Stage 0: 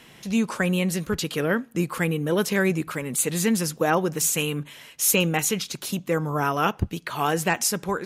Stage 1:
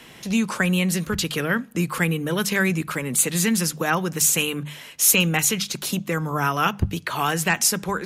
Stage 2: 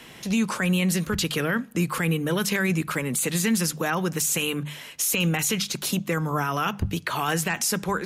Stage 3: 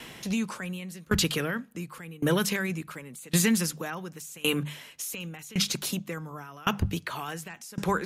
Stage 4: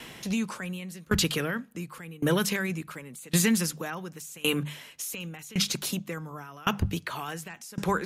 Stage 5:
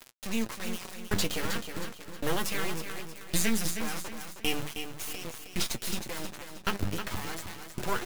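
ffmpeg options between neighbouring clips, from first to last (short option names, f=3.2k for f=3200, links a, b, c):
-filter_complex "[0:a]bandreject=f=50:t=h:w=6,bandreject=f=100:t=h:w=6,bandreject=f=150:t=h:w=6,bandreject=f=200:t=h:w=6,acrossover=split=220|1000[a][b][c];[b]acompressor=threshold=-33dB:ratio=6[d];[a][d][c]amix=inputs=3:normalize=0,volume=4.5dB"
-af "alimiter=limit=-15dB:level=0:latency=1:release=23"
-af "aeval=exprs='val(0)*pow(10,-25*if(lt(mod(0.9*n/s,1),2*abs(0.9)/1000),1-mod(0.9*n/s,1)/(2*abs(0.9)/1000),(mod(0.9*n/s,1)-2*abs(0.9)/1000)/(1-2*abs(0.9)/1000))/20)':c=same,volume=3dB"
-af anull
-filter_complex "[0:a]acrusher=bits=3:dc=4:mix=0:aa=0.000001,flanger=delay=8:depth=2.4:regen=43:speed=0.38:shape=triangular,asplit=2[a][b];[b]aecho=0:1:315|630|945|1260:0.398|0.155|0.0606|0.0236[c];[a][c]amix=inputs=2:normalize=0,volume=3.5dB"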